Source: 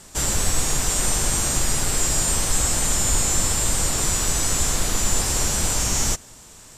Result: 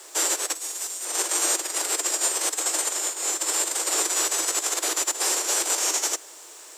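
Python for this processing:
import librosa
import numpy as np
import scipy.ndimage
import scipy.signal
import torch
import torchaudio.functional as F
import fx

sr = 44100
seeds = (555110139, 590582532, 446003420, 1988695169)

y = fx.high_shelf(x, sr, hz=4200.0, db=10.0, at=(0.55, 1.05))
y = fx.over_compress(y, sr, threshold_db=-22.0, ratio=-0.5)
y = scipy.signal.sosfilt(scipy.signal.butter(16, 310.0, 'highpass', fs=sr, output='sos'), y)
y = fx.dmg_noise_colour(y, sr, seeds[0], colour='blue', level_db=-61.0)
y = y * librosa.db_to_amplitude(-1.0)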